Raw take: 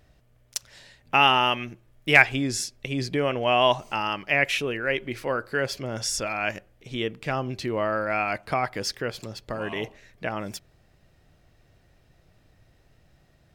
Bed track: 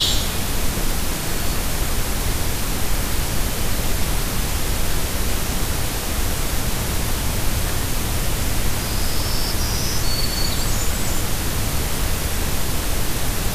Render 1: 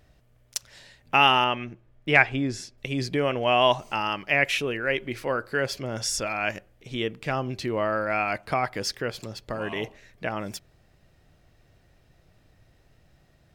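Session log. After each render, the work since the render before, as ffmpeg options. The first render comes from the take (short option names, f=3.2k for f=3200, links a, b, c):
-filter_complex "[0:a]asettb=1/sr,asplit=3[a][b][c];[a]atrim=end=1.444[d];[b]atrim=start=1.44:end=2.78,asetpts=PTS-STARTPTS,afade=t=in:d=0.004:c=qsin,afade=t=out:st=1.336:d=0.004:c=qsin,aemphasis=mode=reproduction:type=75kf[e];[c]atrim=start=2.776[f];[d][e]acrossfade=d=0.004:c1=hsin:c2=qsin[g];[g][f]acrossfade=d=0.004:c1=qsin:c2=hsin"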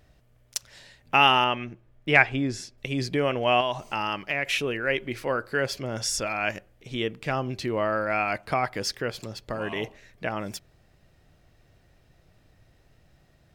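-filter_complex "[0:a]asettb=1/sr,asplit=3[a][b][c];[a]atrim=end=3.604[d];[b]atrim=start=3.6:end=4.49,asetpts=PTS-STARTPTS,afade=t=in:d=0.004:c=qsin,afade=t=out:st=0.886:d=0.004:c=qsin,acompressor=threshold=-22dB:ratio=6:attack=3.2:release=140:knee=1:detection=peak[e];[c]atrim=start=4.486[f];[d][e]acrossfade=d=0.004:c1=hsin:c2=qsin[g];[g][f]acrossfade=d=0.004:c1=qsin:c2=hsin"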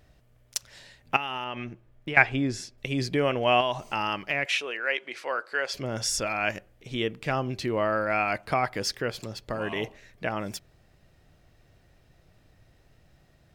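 -filter_complex "[0:a]asettb=1/sr,asplit=3[a][b][c];[a]atrim=end=1.164[d];[b]atrim=start=1.16:end=2.17,asetpts=PTS-STARTPTS,afade=t=in:d=0.004:c=qsin,afade=t=out:st=1.006:d=0.004:c=qsin,acompressor=threshold=-28dB:ratio=16:attack=3.2:release=140:knee=1:detection=peak[e];[c]atrim=start=2.166[f];[d][e]acrossfade=d=0.004:c1=hsin:c2=qsin[g];[g][f]acrossfade=d=0.004:c1=qsin:c2=hsin,asettb=1/sr,asplit=3[h][i][j];[h]atrim=end=4.464[k];[i]atrim=start=4.46:end=5.74,asetpts=PTS-STARTPTS,afade=t=in:d=0.004:c=qsin,afade=t=out:st=1.276:d=0.004:c=qsin,highpass=630,lowpass=7.8k[l];[j]atrim=start=5.736[m];[k][l]acrossfade=d=0.004:c1=hsin:c2=qsin[n];[n][m]acrossfade=d=0.004:c1=qsin:c2=hsin"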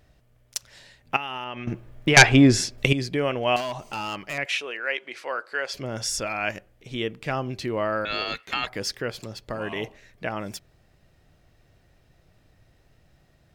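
-filter_complex "[0:a]asettb=1/sr,asplit=3[a][b][c];[a]atrim=end=1.674[d];[b]atrim=start=1.67:end=2.93,asetpts=PTS-STARTPTS,afade=t=in:d=0.004:c=qsin,afade=t=out:st=1.256:d=0.004:c=qsin,aeval=exprs='0.631*sin(PI/2*2.82*val(0)/0.631)':c=same[e];[c]atrim=start=2.926[f];[d][e]acrossfade=d=0.004:c1=hsin:c2=qsin[g];[g][f]acrossfade=d=0.004:c1=qsin:c2=hsin,asettb=1/sr,asplit=3[h][i][j];[h]atrim=end=3.564[k];[i]atrim=start=3.56:end=4.38,asetpts=PTS-STARTPTS,afade=t=in:d=0.004:c=qsin,afade=t=out:st=0.816:d=0.004:c=qsin,asoftclip=type=hard:threshold=-26dB[l];[j]atrim=start=4.376[m];[k][l]acrossfade=d=0.004:c1=hsin:c2=qsin[n];[n][m]acrossfade=d=0.004:c1=qsin:c2=hsin,asettb=1/sr,asplit=3[o][p][q];[o]atrim=end=8.054[r];[p]atrim=start=8.05:end=8.67,asetpts=PTS-STARTPTS,afade=t=in:d=0.004:c=qsin,afade=t=out:st=0.616:d=0.004:c=qsin,aeval=exprs='val(0)*sin(2*PI*2000*n/s)':c=same[s];[q]atrim=start=8.666[t];[r][s]acrossfade=d=0.004:c1=hsin:c2=qsin[u];[u][t]acrossfade=d=0.004:c1=qsin:c2=hsin"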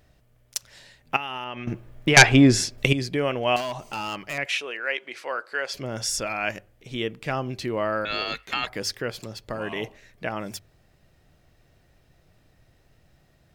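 -af "highshelf=f=10k:g=3.5,bandreject=f=50:t=h:w=6,bandreject=f=100:t=h:w=6"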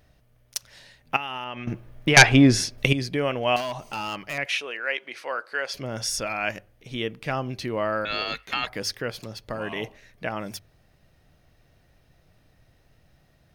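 -af "equalizer=f=370:w=4.6:g=-3,bandreject=f=7.5k:w=7"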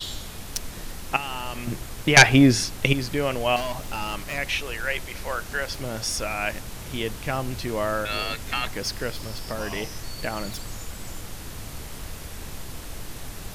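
-filter_complex "[1:a]volume=-15dB[a];[0:a][a]amix=inputs=2:normalize=0"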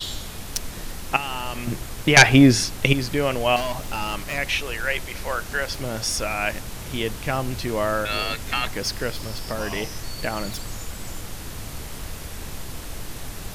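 -af "volume=2.5dB,alimiter=limit=-2dB:level=0:latency=1"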